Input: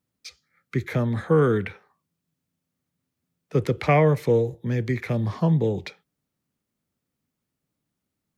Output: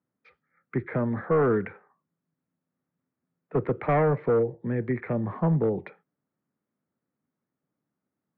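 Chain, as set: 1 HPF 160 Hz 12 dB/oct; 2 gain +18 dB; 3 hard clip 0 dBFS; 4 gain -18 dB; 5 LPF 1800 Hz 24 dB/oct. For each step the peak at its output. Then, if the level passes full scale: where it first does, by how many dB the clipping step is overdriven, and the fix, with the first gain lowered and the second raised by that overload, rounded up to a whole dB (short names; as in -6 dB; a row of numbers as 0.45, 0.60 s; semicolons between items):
-9.0, +9.0, 0.0, -18.0, -16.0 dBFS; step 2, 9.0 dB; step 2 +9 dB, step 4 -9 dB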